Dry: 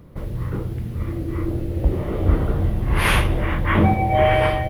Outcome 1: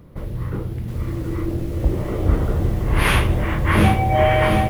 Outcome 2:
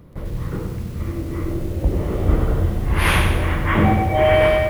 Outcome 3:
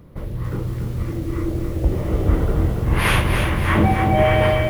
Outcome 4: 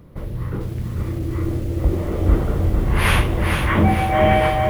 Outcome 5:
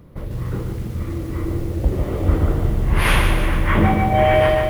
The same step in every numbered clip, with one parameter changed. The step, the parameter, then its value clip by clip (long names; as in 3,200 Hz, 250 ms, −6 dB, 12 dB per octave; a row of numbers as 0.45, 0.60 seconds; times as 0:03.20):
feedback echo at a low word length, delay time: 723, 95, 282, 451, 148 milliseconds